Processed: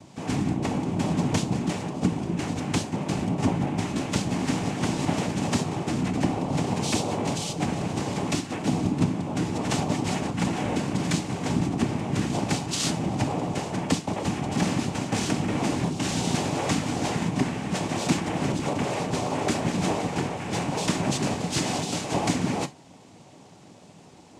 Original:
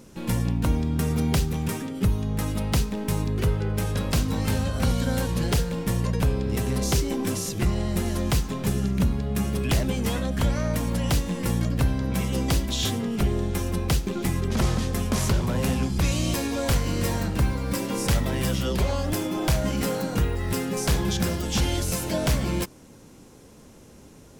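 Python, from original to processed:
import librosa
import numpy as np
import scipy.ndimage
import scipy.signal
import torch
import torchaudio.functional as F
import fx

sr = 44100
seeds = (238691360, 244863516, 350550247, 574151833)

y = fx.lowpass(x, sr, hz=3200.0, slope=12, at=(18.28, 18.83))
y = fx.noise_vocoder(y, sr, seeds[0], bands=4)
y = fx.rev_gated(y, sr, seeds[1], gate_ms=90, shape='falling', drr_db=10.0)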